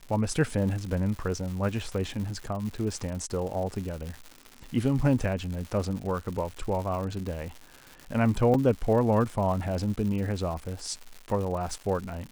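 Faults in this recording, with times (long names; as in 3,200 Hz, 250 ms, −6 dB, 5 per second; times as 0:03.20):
surface crackle 230 per second −35 dBFS
0:08.54: drop-out 4.1 ms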